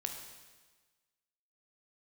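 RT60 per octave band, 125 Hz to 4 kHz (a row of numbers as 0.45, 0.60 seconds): 1.3, 1.3, 1.4, 1.4, 1.3, 1.3 seconds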